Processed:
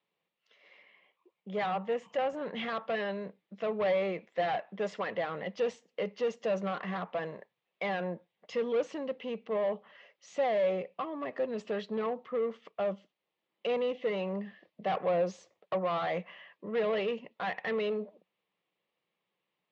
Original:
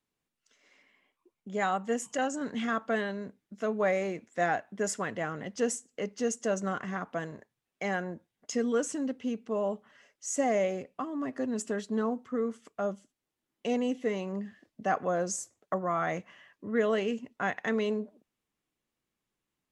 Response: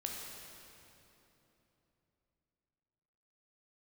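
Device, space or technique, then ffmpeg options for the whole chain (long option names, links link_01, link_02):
overdrive pedal into a guitar cabinet: -filter_complex "[0:a]asplit=2[link_01][link_02];[link_02]highpass=frequency=720:poles=1,volume=21dB,asoftclip=type=tanh:threshold=-15dB[link_03];[link_01][link_03]amix=inputs=2:normalize=0,lowpass=frequency=5500:poles=1,volume=-6dB,highpass=93,equalizer=frequency=180:width_type=q:width=4:gain=8,equalizer=frequency=260:width_type=q:width=4:gain=-9,equalizer=frequency=520:width_type=q:width=4:gain=6,equalizer=frequency=1500:width_type=q:width=4:gain=-9,lowpass=frequency=3800:width=0.5412,lowpass=frequency=3800:width=1.3066,asettb=1/sr,asplit=3[link_04][link_05][link_06];[link_04]atrim=end=1.664[link_07];[link_05]atrim=start=1.66:end=2.55,asetpts=PTS-STARTPTS,afade=type=in:duration=0.004:curve=qsin,afade=type=out:start_time=0.886:duration=0.004:curve=qsin,equalizer=frequency=4900:width_type=o:width=1.5:gain=-6[link_08];[link_06]atrim=start=2.546[link_09];[link_07][link_08]acrossfade=duration=0.004:curve1=hsin:curve2=qsin[link_10];[link_10][link_09]acrossfade=duration=0.004:curve1=qsin:curve2=hsin,volume=-8.5dB"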